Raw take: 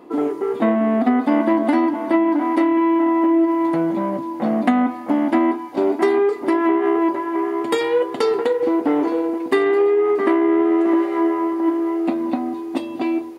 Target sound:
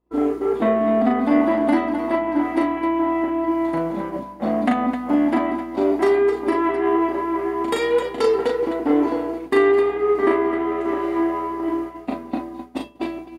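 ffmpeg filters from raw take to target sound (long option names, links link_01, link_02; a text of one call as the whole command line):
ffmpeg -i in.wav -af "aeval=exprs='val(0)+0.00794*(sin(2*PI*60*n/s)+sin(2*PI*2*60*n/s)/2+sin(2*PI*3*60*n/s)/3+sin(2*PI*4*60*n/s)/4+sin(2*PI*5*60*n/s)/5)':channel_layout=same,aecho=1:1:37.9|259.5:0.708|0.355,agate=range=-33dB:threshold=-21dB:ratio=3:detection=peak,volume=-2.5dB" out.wav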